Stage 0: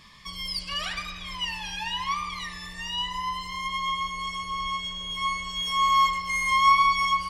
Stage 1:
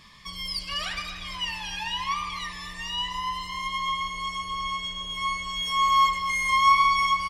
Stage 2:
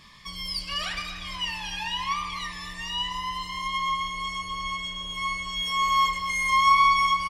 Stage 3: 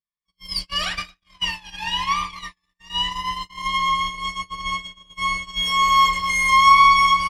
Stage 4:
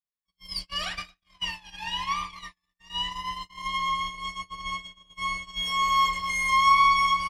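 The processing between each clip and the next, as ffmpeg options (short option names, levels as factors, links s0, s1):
-af "aecho=1:1:247|494|741|988|1235|1482:0.224|0.123|0.0677|0.0372|0.0205|0.0113"
-filter_complex "[0:a]asplit=2[s0][s1];[s1]adelay=27,volume=0.282[s2];[s0][s2]amix=inputs=2:normalize=0"
-af "agate=range=0.00158:threshold=0.0282:ratio=16:detection=peak,volume=2.11"
-af "equalizer=f=720:w=5.9:g=4.5,volume=0.447"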